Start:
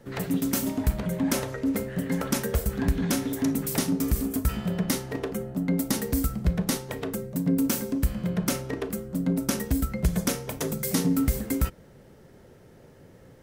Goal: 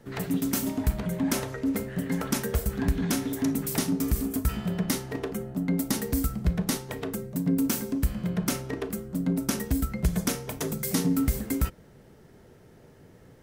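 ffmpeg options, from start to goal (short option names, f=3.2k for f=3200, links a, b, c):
-af "bandreject=f=540:w=12,volume=-1dB"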